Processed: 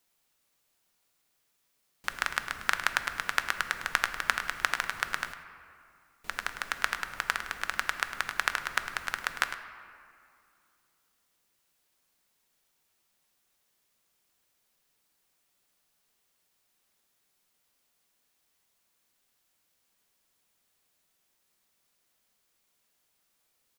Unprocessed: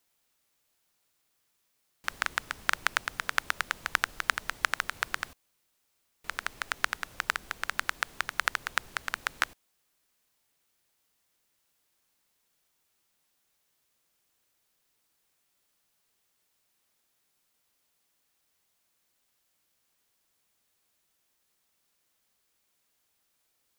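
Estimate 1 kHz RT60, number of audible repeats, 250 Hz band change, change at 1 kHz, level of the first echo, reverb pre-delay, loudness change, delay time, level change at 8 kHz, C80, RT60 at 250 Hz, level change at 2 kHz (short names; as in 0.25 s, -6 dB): 2.4 s, 1, +1.0 dB, +1.0 dB, -11.5 dB, 4 ms, +0.5 dB, 0.104 s, +0.5 dB, 8.5 dB, 3.1 s, +1.0 dB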